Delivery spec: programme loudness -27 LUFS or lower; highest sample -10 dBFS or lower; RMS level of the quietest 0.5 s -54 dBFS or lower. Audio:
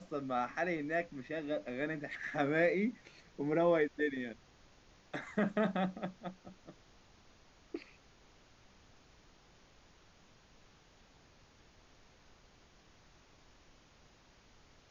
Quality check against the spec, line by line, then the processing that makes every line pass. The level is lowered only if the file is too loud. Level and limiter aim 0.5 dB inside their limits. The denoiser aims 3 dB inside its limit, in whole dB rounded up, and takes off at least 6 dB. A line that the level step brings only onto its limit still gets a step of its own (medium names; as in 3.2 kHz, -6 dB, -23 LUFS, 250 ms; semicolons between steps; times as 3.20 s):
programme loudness -36.0 LUFS: pass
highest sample -18.0 dBFS: pass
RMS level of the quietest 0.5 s -64 dBFS: pass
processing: none needed